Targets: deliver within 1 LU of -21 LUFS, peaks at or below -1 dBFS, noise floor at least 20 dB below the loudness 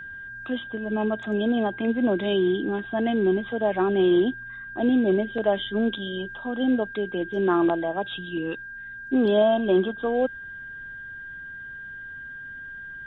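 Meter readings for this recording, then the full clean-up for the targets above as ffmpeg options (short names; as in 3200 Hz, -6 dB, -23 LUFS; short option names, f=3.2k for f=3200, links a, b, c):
steady tone 1600 Hz; tone level -36 dBFS; loudness -24.5 LUFS; peak -10.0 dBFS; loudness target -21.0 LUFS
-> -af "bandreject=f=1.6k:w=30"
-af "volume=3.5dB"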